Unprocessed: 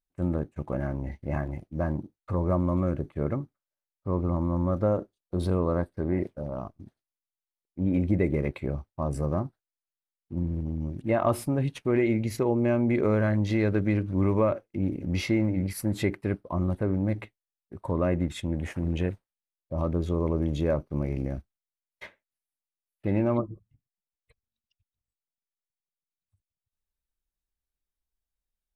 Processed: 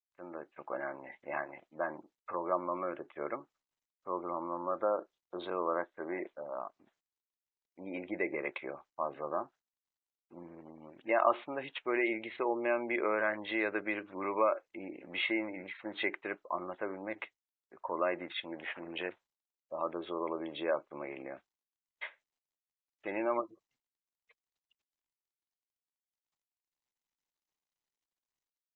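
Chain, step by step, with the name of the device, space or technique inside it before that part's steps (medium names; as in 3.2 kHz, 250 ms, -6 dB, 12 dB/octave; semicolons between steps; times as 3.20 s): high-pass 810 Hz 12 dB/octave; spectral gate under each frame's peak -30 dB strong; dynamic bell 340 Hz, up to +6 dB, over -57 dBFS, Q 5.5; Bluetooth headset (high-pass 130 Hz 6 dB/octave; level rider gain up to 6.5 dB; resampled via 8 kHz; trim -4 dB; SBC 64 kbps 16 kHz)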